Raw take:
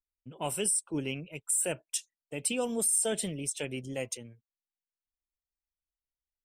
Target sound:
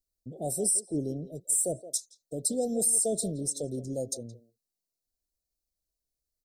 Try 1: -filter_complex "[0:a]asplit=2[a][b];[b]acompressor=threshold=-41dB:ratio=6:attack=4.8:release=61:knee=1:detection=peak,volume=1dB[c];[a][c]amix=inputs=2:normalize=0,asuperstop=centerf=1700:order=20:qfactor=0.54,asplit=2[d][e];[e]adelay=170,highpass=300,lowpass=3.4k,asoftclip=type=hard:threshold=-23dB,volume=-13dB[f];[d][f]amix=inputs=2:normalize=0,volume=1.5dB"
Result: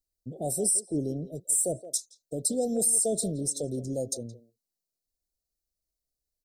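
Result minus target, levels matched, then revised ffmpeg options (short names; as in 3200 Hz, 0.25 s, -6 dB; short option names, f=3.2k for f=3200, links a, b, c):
compressor: peak gain reduction -8.5 dB
-filter_complex "[0:a]asplit=2[a][b];[b]acompressor=threshold=-51dB:ratio=6:attack=4.8:release=61:knee=1:detection=peak,volume=1dB[c];[a][c]amix=inputs=2:normalize=0,asuperstop=centerf=1700:order=20:qfactor=0.54,asplit=2[d][e];[e]adelay=170,highpass=300,lowpass=3.4k,asoftclip=type=hard:threshold=-23dB,volume=-13dB[f];[d][f]amix=inputs=2:normalize=0,volume=1.5dB"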